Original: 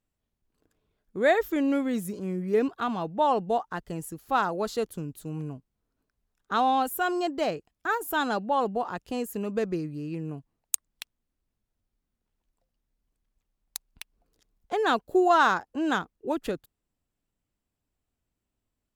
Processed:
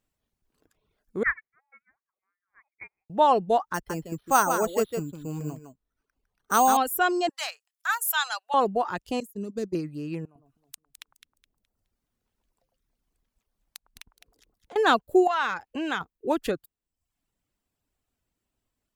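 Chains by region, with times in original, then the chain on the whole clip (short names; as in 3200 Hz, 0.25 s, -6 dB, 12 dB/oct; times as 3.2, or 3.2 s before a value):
1.23–3.1 steep high-pass 1300 Hz 72 dB/oct + inverted band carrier 3600 Hz + upward expander 2.5:1, over -46 dBFS
3.74–6.77 echo 0.156 s -5.5 dB + careless resampling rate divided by 6×, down filtered, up hold
7.29–8.54 Bessel high-pass 1400 Hz, order 6 + bell 9600 Hz +7.5 dB 1.8 oct
9.2–9.75 band shelf 1300 Hz -14 dB 3 oct + expander -30 dBFS
10.25–14.76 compressor 16:1, threshold -46 dBFS + echo with dull and thin repeats by turns 0.105 s, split 1200 Hz, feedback 54%, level -3.5 dB
15.27–16.01 bell 2400 Hz +10 dB 0.99 oct + compressor 2.5:1, threshold -32 dBFS
whole clip: reverb removal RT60 0.61 s; low shelf 340 Hz -4 dB; gain +5 dB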